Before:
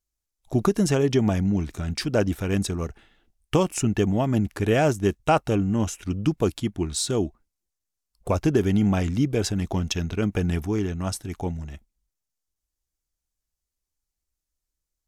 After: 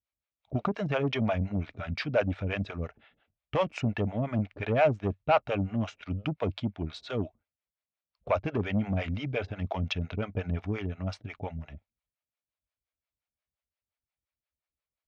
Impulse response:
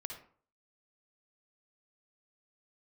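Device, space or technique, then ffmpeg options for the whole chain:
guitar amplifier with harmonic tremolo: -filter_complex "[0:a]acrossover=split=460[link_01][link_02];[link_01]aeval=exprs='val(0)*(1-1/2+1/2*cos(2*PI*5.7*n/s))':channel_layout=same[link_03];[link_02]aeval=exprs='val(0)*(1-1/2-1/2*cos(2*PI*5.7*n/s))':channel_layout=same[link_04];[link_03][link_04]amix=inputs=2:normalize=0,asoftclip=type=tanh:threshold=-18.5dB,highpass=83,equalizer=frequency=94:width_type=q:width=4:gain=3,equalizer=frequency=180:width_type=q:width=4:gain=-4,equalizer=frequency=350:width_type=q:width=4:gain=-9,equalizer=frequency=610:width_type=q:width=4:gain=7,equalizer=frequency=1300:width_type=q:width=4:gain=3,equalizer=frequency=2300:width_type=q:width=4:gain=6,lowpass=frequency=3800:width=0.5412,lowpass=frequency=3800:width=1.3066"

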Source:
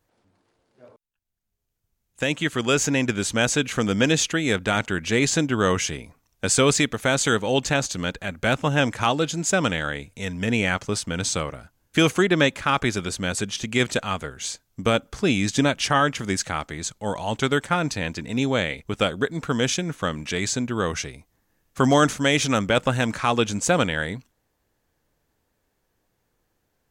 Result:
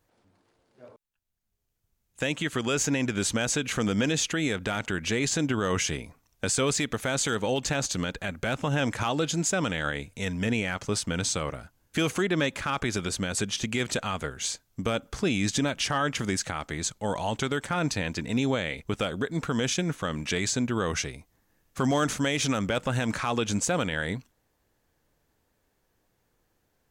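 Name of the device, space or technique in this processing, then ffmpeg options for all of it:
clipper into limiter: -af "asoftclip=type=hard:threshold=-9dB,alimiter=limit=-17dB:level=0:latency=1:release=80"

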